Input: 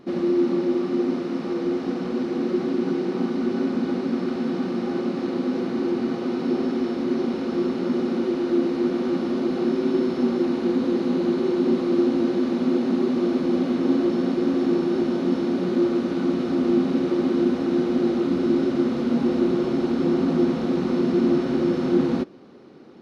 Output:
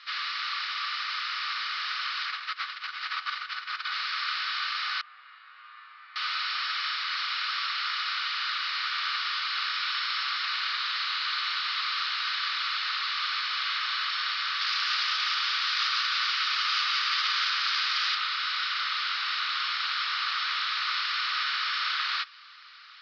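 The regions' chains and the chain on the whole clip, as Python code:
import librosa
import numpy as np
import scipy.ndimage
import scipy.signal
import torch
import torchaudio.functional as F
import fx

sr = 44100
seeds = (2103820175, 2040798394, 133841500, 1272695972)

y = fx.chain(x, sr, fx.high_shelf(hz=3300.0, db=-7.0),
    fx.over_compress(threshold_db=-26.0, ratio=-0.5), at=(2.26, 3.92))
y = fx.chain(y, sr, fx.lowpass(hz=1800.0, slope=12),
    fx.comb_fb(f0_hz=110.0, decay_s=1.4, harmonics='all', damping=0.0, mix_pct=90), at=(5.01, 6.16))
y = fx.chain(y, sr, fx.cvsd(bps=32000),
    fx.echo_crushed(ms=179, feedback_pct=35, bits=8, wet_db=-5.0), at=(14.61, 18.15))
y = scipy.signal.sosfilt(scipy.signal.cheby1(4, 1.0, [1200.0, 5000.0], 'bandpass', fs=sr, output='sos'), y)
y = fx.high_shelf(y, sr, hz=2500.0, db=11.0)
y = y * librosa.db_to_amplitude(8.5)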